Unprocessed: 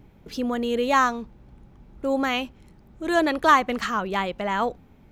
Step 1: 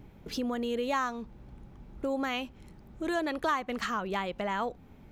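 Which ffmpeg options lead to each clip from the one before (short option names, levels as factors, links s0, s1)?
-af "acompressor=threshold=0.0251:ratio=2.5"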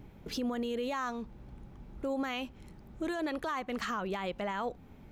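-af "alimiter=level_in=1.33:limit=0.0631:level=0:latency=1:release=35,volume=0.75"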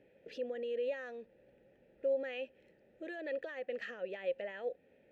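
-filter_complex "[0:a]asplit=3[s0][s1][s2];[s0]bandpass=f=530:t=q:w=8,volume=1[s3];[s1]bandpass=f=1840:t=q:w=8,volume=0.501[s4];[s2]bandpass=f=2480:t=q:w=8,volume=0.355[s5];[s3][s4][s5]amix=inputs=3:normalize=0,volume=1.78"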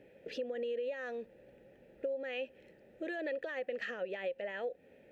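-af "acompressor=threshold=0.01:ratio=12,volume=2"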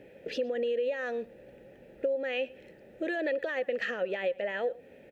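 -filter_complex "[0:a]asplit=2[s0][s1];[s1]adelay=116.6,volume=0.0708,highshelf=f=4000:g=-2.62[s2];[s0][s2]amix=inputs=2:normalize=0,volume=2.24"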